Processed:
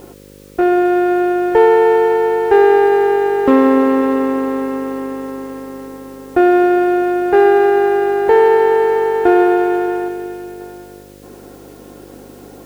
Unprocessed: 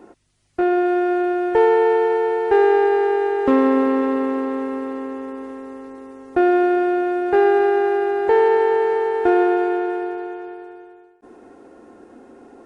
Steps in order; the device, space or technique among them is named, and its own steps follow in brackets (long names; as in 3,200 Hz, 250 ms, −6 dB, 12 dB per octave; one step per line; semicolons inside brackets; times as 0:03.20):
video cassette with head-switching buzz (hum with harmonics 50 Hz, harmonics 11, −46 dBFS 0 dB per octave; white noise bed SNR 35 dB)
0:10.08–0:10.61: parametric band 990 Hz −6.5 dB 1.4 octaves
level +5 dB